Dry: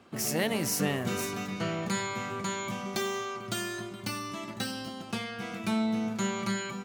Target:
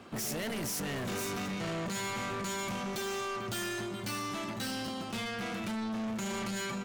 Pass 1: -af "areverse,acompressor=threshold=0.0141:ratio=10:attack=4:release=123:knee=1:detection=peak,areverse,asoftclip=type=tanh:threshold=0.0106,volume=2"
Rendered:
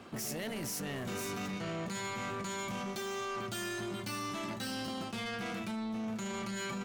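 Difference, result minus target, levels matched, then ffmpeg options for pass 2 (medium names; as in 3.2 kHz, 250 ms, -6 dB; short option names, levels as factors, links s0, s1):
compression: peak gain reduction +8 dB
-af "areverse,acompressor=threshold=0.0398:ratio=10:attack=4:release=123:knee=1:detection=peak,areverse,asoftclip=type=tanh:threshold=0.0106,volume=2"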